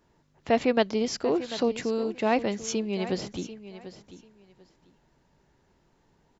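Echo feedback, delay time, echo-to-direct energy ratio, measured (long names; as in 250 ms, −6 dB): 20%, 742 ms, −14.0 dB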